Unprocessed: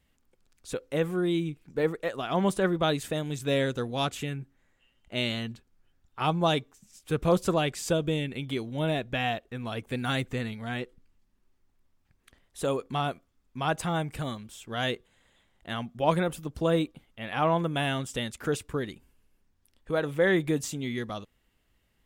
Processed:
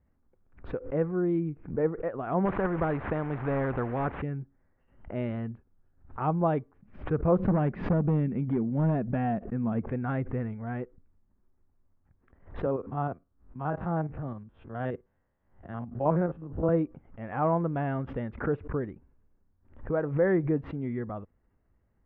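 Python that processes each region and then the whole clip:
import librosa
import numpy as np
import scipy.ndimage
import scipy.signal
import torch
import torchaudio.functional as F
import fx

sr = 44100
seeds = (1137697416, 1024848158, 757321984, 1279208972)

y = fx.chain(x, sr, fx.delta_mod(bps=64000, step_db=-43.0),
    fx.lowpass(hz=3400.0, slope=24),
    fx.spectral_comp(ratio=2.0), at=(2.45, 4.22))
y = fx.chain(y, sr, fx.peak_eq(hz=200.0, db=14.5, octaves=0.67),
    fx.overload_stage(gain_db=21.0), at=(7.39, 9.82))
y = fx.chain(y, sr, fx.spec_steps(hold_ms=50),
    fx.peak_eq(hz=2200.0, db=-5.5, octaves=0.26),
    fx.band_widen(depth_pct=40), at=(12.66, 16.69))
y = scipy.signal.sosfilt(scipy.signal.bessel(6, 1100.0, 'lowpass', norm='mag', fs=sr, output='sos'), y)
y = fx.peak_eq(y, sr, hz=83.0, db=4.5, octaves=0.77)
y = fx.pre_swell(y, sr, db_per_s=130.0)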